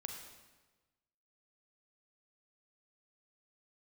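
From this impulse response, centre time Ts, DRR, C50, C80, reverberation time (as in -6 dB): 43 ms, 2.5 dB, 4.0 dB, 6.0 dB, 1.2 s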